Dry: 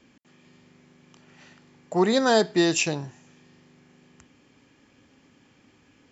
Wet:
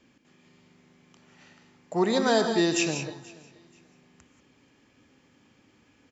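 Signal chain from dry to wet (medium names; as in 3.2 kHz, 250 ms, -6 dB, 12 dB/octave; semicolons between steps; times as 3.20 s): on a send: feedback delay 481 ms, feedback 25%, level -23 dB; on the sum: gated-style reverb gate 210 ms rising, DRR 6 dB; trim -3.5 dB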